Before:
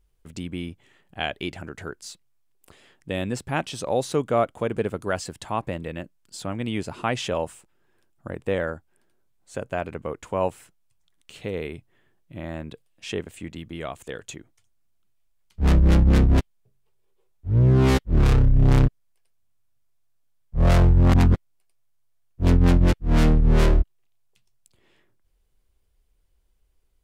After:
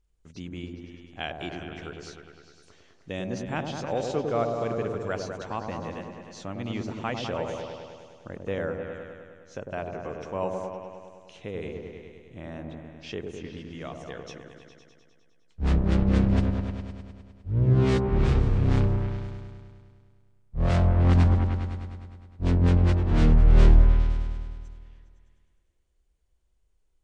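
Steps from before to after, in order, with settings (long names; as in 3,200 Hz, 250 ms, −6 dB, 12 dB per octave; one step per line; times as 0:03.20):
hearing-aid frequency compression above 3,700 Hz 1.5 to 1
echo whose low-pass opens from repeat to repeat 102 ms, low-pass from 750 Hz, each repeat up 1 octave, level −3 dB
level −6 dB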